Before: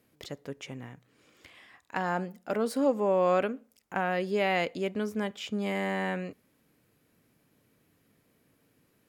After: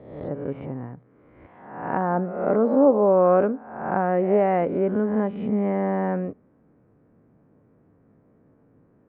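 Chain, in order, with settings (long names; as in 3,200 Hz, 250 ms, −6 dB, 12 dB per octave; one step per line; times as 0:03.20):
peak hold with a rise ahead of every peak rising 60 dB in 0.87 s
Bessel low-pass filter 890 Hz, order 4
level +8.5 dB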